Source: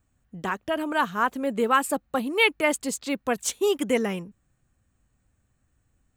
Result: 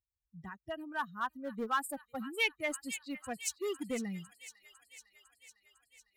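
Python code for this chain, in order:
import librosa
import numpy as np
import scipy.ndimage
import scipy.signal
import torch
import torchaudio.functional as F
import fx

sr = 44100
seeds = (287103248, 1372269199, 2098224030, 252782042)

p1 = fx.bin_expand(x, sr, power=2.0)
p2 = scipy.signal.sosfilt(scipy.signal.butter(2, 53.0, 'highpass', fs=sr, output='sos'), p1)
p3 = fx.tilt_shelf(p2, sr, db=6.0, hz=1200.0)
p4 = fx.notch(p3, sr, hz=3400.0, q=17.0)
p5 = fx.echo_wet_highpass(p4, sr, ms=503, feedback_pct=66, hz=2100.0, wet_db=-11.5)
p6 = np.clip(p5, -10.0 ** (-21.0 / 20.0), 10.0 ** (-21.0 / 20.0))
p7 = p5 + (p6 * 10.0 ** (-7.0 / 20.0))
p8 = fx.tone_stack(p7, sr, knobs='5-5-5')
y = p8 * 10.0 ** (2.0 / 20.0)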